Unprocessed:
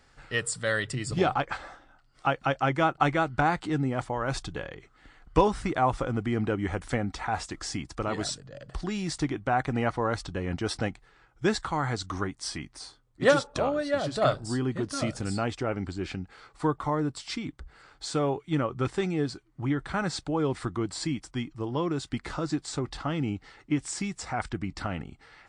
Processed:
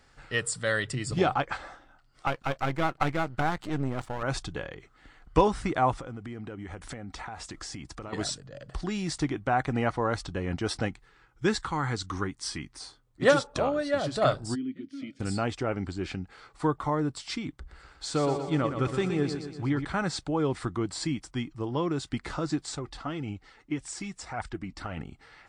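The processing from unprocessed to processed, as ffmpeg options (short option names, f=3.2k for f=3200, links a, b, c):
-filter_complex "[0:a]asettb=1/sr,asplit=3[a][b][c];[a]atrim=end=2.274[d];[b]atrim=start=2.27:end=4.23,asetpts=PTS-STARTPTS,afade=t=in:d=0.004:c=qsin,afade=t=out:st=1.956:d=0.004:c=qsin,aeval=exprs='if(lt(val(0),0),0.251*val(0),val(0))':c=same[e];[c]atrim=start=4.226[f];[d][e]acrossfade=d=0.004:c1=hsin:c2=qsin[g];[g][f]acrossfade=d=0.004:c1=qsin:c2=hsin,asettb=1/sr,asplit=3[h][i][j];[h]atrim=end=5.924[k];[i]atrim=start=5.92:end=8.13,asetpts=PTS-STARTPTS,afade=t=in:d=0.004:c=qsin,afade=t=out:st=2.206:d=0.004:c=qsin,acompressor=threshold=-35dB:ratio=16:attack=3.2:release=140:knee=1:detection=peak[l];[j]atrim=start=8.126[m];[k][l]acrossfade=d=0.004:c1=hsin:c2=qsin[n];[n][m]acrossfade=d=0.004:c1=qsin:c2=hsin,asettb=1/sr,asplit=3[o][p][q];[o]atrim=end=10.854[r];[p]atrim=start=10.85:end=12.78,asetpts=PTS-STARTPTS,afade=t=in:d=0.004:c=qsin,afade=t=out:st=1.926:d=0.004:c=qsin,equalizer=f=650:t=o:w=0.36:g=-10[s];[q]atrim=start=12.776[t];[r][s]acrossfade=d=0.004:c1=hsin:c2=qsin[u];[u][t]acrossfade=d=0.004:c1=qsin:c2=hsin,asplit=3[v][w][x];[v]afade=t=out:st=14.54:d=0.02[y];[w]asplit=3[z][aa][ab];[z]bandpass=f=270:t=q:w=8,volume=0dB[ac];[aa]bandpass=f=2.29k:t=q:w=8,volume=-6dB[ad];[ab]bandpass=f=3.01k:t=q:w=8,volume=-9dB[ae];[ac][ad][ae]amix=inputs=3:normalize=0,afade=t=in:st=14.54:d=0.02,afade=t=out:st=15.19:d=0.02[af];[x]afade=t=in:st=15.19:d=0.02[ag];[y][af][ag]amix=inputs=3:normalize=0,asettb=1/sr,asplit=3[ah][ai][aj];[ah]atrim=end=17.504[ak];[ai]atrim=start=17.5:end=19.85,asetpts=PTS-STARTPTS,afade=t=in:d=0.004:c=qsin,afade=t=out:st=2.346:d=0.004:c=qsin,aecho=1:1:120|240|360|480|600|720|840:0.398|0.219|0.12|0.0662|0.0364|0.02|0.011,atrim=end_sample=103635[al];[aj]atrim=start=19.846[am];[ak][al]acrossfade=d=0.004:c1=hsin:c2=qsin[an];[an][am]acrossfade=d=0.004:c1=qsin:c2=hsin,asettb=1/sr,asplit=3[ao][ap][aq];[ao]atrim=end=22.754[ar];[ap]atrim=start=22.75:end=24.97,asetpts=PTS-STARTPTS,afade=t=in:d=0.004:c=qsin,afade=t=out:st=2.216:d=0.004:c=qsin,flanger=delay=1:depth=3.6:regen=43:speed=1.8:shape=triangular[as];[aq]atrim=start=24.966[at];[ar][as]acrossfade=d=0.004:c1=hsin:c2=qsin[au];[au][at]acrossfade=d=0.004:c1=qsin:c2=hsin"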